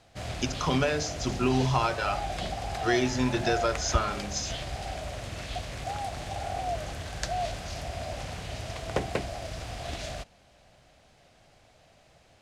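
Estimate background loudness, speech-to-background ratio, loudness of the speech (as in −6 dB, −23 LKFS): −35.0 LKFS, 6.0 dB, −29.0 LKFS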